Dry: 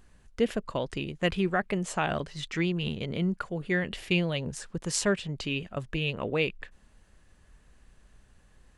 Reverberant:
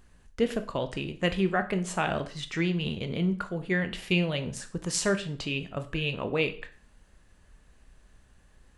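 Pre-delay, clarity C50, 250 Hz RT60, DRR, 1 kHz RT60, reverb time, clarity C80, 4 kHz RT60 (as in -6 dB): 5 ms, 14.0 dB, 0.45 s, 8.0 dB, 0.45 s, 0.45 s, 18.5 dB, 0.40 s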